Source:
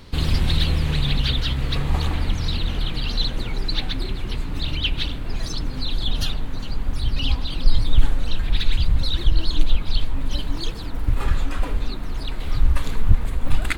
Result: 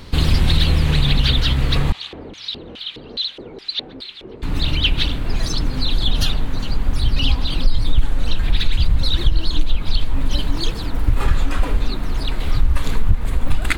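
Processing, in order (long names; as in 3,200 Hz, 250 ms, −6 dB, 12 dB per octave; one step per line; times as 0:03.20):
downward compressor 4 to 1, threshold −15 dBFS, peak gain reduction 9 dB
0:01.92–0:04.43: auto-filter band-pass square 2.4 Hz 430–3,500 Hz
level +6 dB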